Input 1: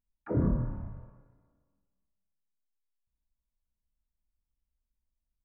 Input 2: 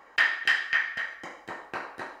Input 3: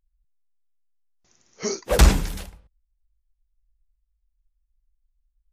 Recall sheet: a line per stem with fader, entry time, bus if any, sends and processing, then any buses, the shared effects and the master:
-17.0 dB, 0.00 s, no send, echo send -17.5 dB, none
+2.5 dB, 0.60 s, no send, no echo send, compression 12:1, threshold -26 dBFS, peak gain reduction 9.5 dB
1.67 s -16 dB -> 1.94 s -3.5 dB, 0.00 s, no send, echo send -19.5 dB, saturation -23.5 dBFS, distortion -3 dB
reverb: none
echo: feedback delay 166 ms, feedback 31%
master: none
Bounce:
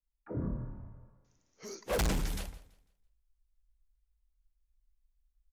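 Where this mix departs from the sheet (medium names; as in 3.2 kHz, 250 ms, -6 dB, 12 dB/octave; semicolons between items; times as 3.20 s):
stem 1 -17.0 dB -> -8.5 dB; stem 2: muted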